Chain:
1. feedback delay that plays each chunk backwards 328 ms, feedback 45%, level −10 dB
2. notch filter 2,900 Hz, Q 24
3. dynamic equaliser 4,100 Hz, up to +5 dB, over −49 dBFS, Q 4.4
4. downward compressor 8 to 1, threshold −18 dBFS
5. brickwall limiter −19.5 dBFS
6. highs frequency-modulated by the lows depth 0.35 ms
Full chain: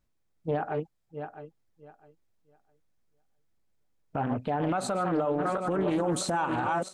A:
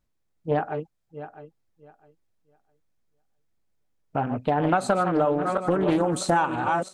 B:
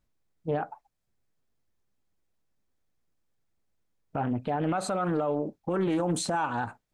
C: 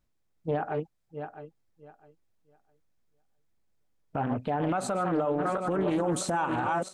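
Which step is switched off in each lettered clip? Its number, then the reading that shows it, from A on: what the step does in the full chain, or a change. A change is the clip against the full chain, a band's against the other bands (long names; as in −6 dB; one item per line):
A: 5, average gain reduction 3.0 dB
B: 1, 1 kHz band −1.5 dB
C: 3, 4 kHz band −3.0 dB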